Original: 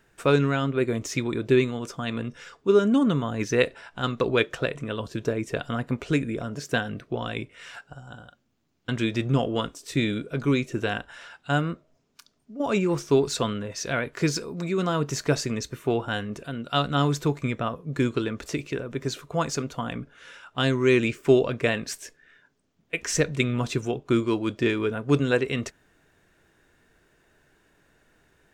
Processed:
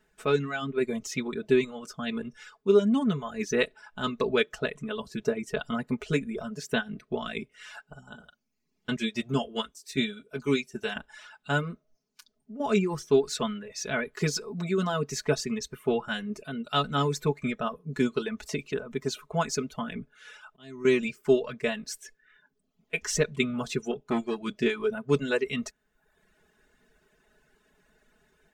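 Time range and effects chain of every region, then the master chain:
0:08.96–0:10.96: high-shelf EQ 2,400 Hz +7 dB + notch comb filter 160 Hz + expander for the loud parts, over −35 dBFS
0:19.82–0:20.85: downward compressor 2.5 to 1, threshold −28 dBFS + volume swells 497 ms
0:23.91–0:24.41: notch filter 1,100 Hz, Q 6 + saturating transformer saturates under 680 Hz
whole clip: reverb reduction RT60 0.78 s; comb filter 4.7 ms, depth 88%; automatic gain control gain up to 4.5 dB; level −8 dB

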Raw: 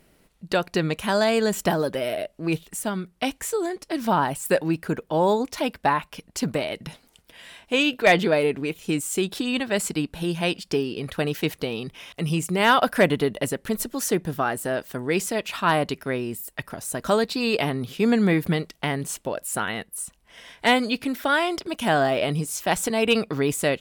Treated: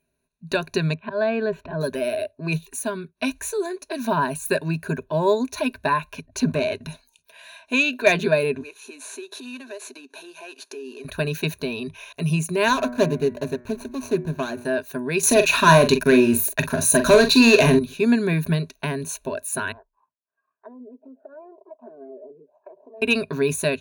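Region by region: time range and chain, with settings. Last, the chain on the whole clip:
0:00.94–0:01.81: high-frequency loss of the air 450 metres + volume swells 128 ms
0:06.13–0:06.82: high-shelf EQ 6,300 Hz −9.5 dB + leveller curve on the samples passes 1
0:08.61–0:11.05: variable-slope delta modulation 64 kbit/s + downward compressor, threshold −34 dBFS + high-pass filter 260 Hz 24 dB per octave
0:12.68–0:14.65: running median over 25 samples + hum removal 121.8 Hz, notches 19 + one half of a high-frequency compander encoder only
0:15.23–0:17.79: leveller curve on the samples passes 3 + double-tracking delay 43 ms −8.5 dB
0:19.72–0:23.02: running median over 41 samples + envelope filter 400–1,200 Hz, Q 3.5, down, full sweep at −21 dBFS + downward compressor, threshold −40 dBFS
whole clip: dynamic equaliser 790 Hz, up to −4 dB, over −36 dBFS, Q 2.4; noise reduction from a noise print of the clip's start 18 dB; EQ curve with evenly spaced ripples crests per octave 1.5, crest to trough 15 dB; level −2 dB

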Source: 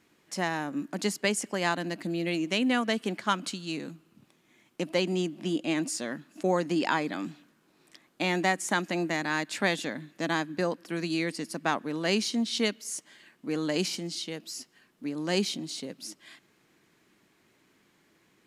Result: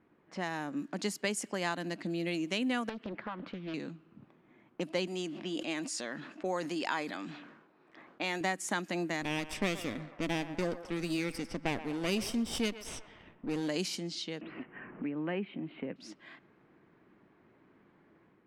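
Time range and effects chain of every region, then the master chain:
0:02.89–0:03.74: low-pass filter 2,200 Hz + downward compressor, threshold −32 dBFS + highs frequency-modulated by the lows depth 0.73 ms
0:05.07–0:08.41: low-shelf EQ 280 Hz −11.5 dB + level that may fall only so fast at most 68 dB per second
0:09.22–0:13.69: lower of the sound and its delayed copy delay 0.37 ms + low-shelf EQ 160 Hz +5.5 dB + feedback echo with a band-pass in the loop 122 ms, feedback 61%, band-pass 1,000 Hz, level −12 dB
0:14.41–0:15.96: Butterworth low-pass 2,700 Hz 48 dB per octave + multiband upward and downward compressor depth 70%
whole clip: automatic gain control gain up to 4 dB; low-pass that shuts in the quiet parts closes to 1,300 Hz, open at −23 dBFS; downward compressor 1.5 to 1, threshold −47 dBFS

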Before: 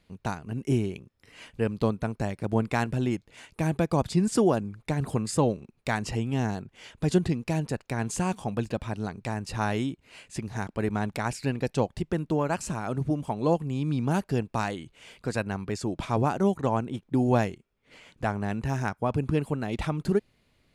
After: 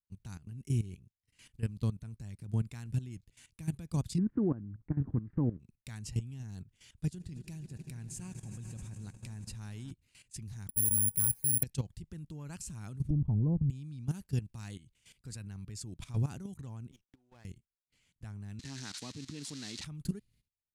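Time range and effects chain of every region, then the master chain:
0:04.18–0:05.60: one scale factor per block 5 bits + Butterworth low-pass 1,700 Hz + parametric band 290 Hz +10.5 dB 0.68 octaves
0:07.04–0:09.91: transient designer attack −5 dB, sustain −9 dB + echo that builds up and dies away 80 ms, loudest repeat 5, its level −18 dB
0:10.69–0:11.63: head-to-tape spacing loss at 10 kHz 42 dB + hum removal 276.4 Hz, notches 33 + bad sample-rate conversion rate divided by 4×, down filtered, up zero stuff
0:13.10–0:13.70: low-pass filter 1,000 Hz + spectral tilt −4 dB per octave
0:16.91–0:17.45: downward compressor 16 to 1, threshold −32 dBFS + band-pass filter 560–3,700 Hz + windowed peak hold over 5 samples
0:18.59–0:19.84: spike at every zero crossing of −19.5 dBFS + loudspeaker in its box 260–6,200 Hz, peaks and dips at 280 Hz +7 dB, 1,900 Hz +4 dB, 4,100 Hz +7 dB
whole clip: downward expander −46 dBFS; drawn EQ curve 110 Hz 0 dB, 630 Hz −23 dB, 9,100 Hz 0 dB; output level in coarse steps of 15 dB; level +2 dB

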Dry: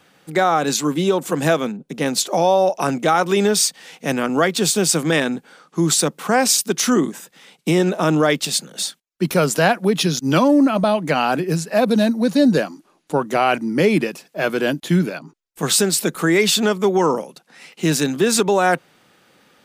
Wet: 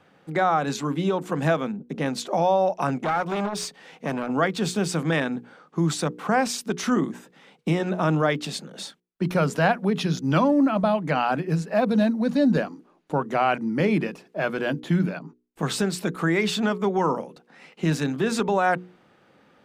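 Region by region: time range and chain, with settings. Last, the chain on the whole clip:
0:03.01–0:04.31: hard clipping −12 dBFS + saturating transformer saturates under 590 Hz
whole clip: low-pass filter 1,200 Hz 6 dB per octave; mains-hum notches 60/120/180/240/300/360/420/480 Hz; dynamic equaliser 390 Hz, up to −7 dB, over −30 dBFS, Q 0.92

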